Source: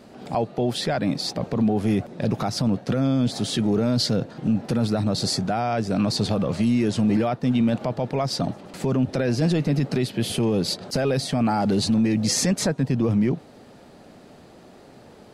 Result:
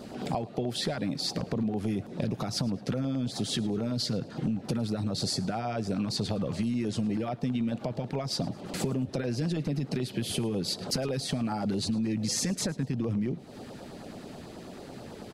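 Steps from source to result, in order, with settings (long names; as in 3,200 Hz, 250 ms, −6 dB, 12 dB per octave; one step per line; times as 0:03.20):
downward compressor 8 to 1, threshold −32 dBFS, peak gain reduction 14.5 dB
auto-filter notch saw down 9.2 Hz 420–2,600 Hz
on a send: repeating echo 108 ms, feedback 33%, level −21.5 dB
on the sum: level +5 dB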